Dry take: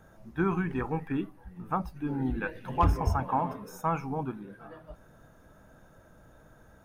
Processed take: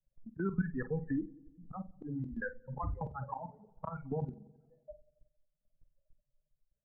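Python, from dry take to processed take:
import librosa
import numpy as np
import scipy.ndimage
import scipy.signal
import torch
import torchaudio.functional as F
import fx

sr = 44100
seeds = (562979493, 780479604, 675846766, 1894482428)

y = fx.bin_expand(x, sr, power=3.0)
y = fx.env_lowpass(y, sr, base_hz=400.0, full_db=-30.5)
y = scipy.signal.sosfilt(scipy.signal.ellip(4, 1.0, 40, 1700.0, 'lowpass', fs=sr, output='sos'), y)
y = fx.low_shelf(y, sr, hz=160.0, db=6.5)
y = fx.level_steps(y, sr, step_db=15)
y = fx.auto_swell(y, sr, attack_ms=559.0)
y = fx.doubler(y, sr, ms=47.0, db=-12.0)
y = fx.echo_wet_lowpass(y, sr, ms=90, feedback_pct=48, hz=680.0, wet_db=-19.5)
y = fx.band_squash(y, sr, depth_pct=70)
y = F.gain(torch.from_numpy(y), 15.5).numpy()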